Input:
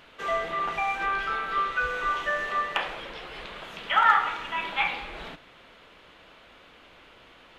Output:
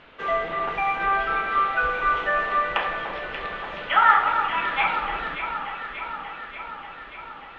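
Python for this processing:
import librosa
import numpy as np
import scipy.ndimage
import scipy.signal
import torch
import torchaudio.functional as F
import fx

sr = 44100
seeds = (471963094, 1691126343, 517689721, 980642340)

p1 = scipy.signal.sosfilt(scipy.signal.butter(2, 2900.0, 'lowpass', fs=sr, output='sos'), x)
p2 = p1 + fx.echo_alternate(p1, sr, ms=292, hz=1500.0, feedback_pct=82, wet_db=-6.5, dry=0)
y = p2 * librosa.db_to_amplitude(3.5)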